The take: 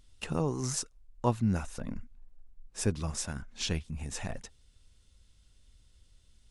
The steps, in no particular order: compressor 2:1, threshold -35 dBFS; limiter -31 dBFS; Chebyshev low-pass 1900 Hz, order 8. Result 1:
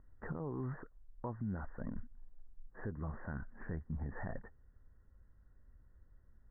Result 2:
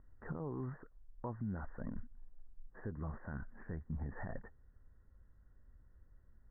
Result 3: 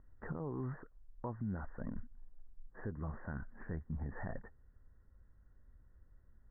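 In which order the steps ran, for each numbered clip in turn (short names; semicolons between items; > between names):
Chebyshev low-pass > compressor > limiter; compressor > limiter > Chebyshev low-pass; compressor > Chebyshev low-pass > limiter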